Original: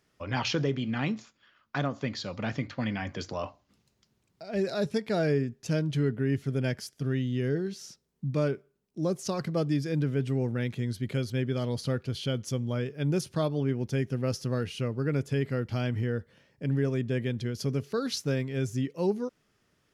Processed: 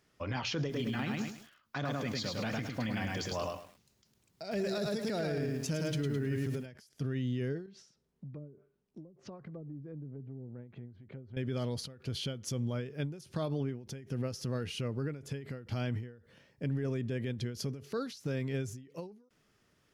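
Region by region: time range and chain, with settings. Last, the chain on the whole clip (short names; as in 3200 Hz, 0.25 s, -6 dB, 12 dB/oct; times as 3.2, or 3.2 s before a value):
0.59–6.66 high shelf 4500 Hz +7.5 dB + lo-fi delay 0.105 s, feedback 35%, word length 9-bit, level -3 dB
7.66–11.37 treble ducked by the level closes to 330 Hz, closed at -23 dBFS + high shelf 3800 Hz -8 dB + compressor 3:1, threshold -47 dBFS
whole clip: limiter -26 dBFS; ending taper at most 110 dB/s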